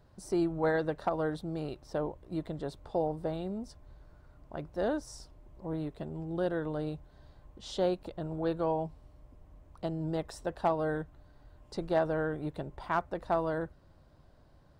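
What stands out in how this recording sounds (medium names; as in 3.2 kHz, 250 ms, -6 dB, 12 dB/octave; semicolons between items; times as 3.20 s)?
noise floor -60 dBFS; spectral tilt -4.5 dB/octave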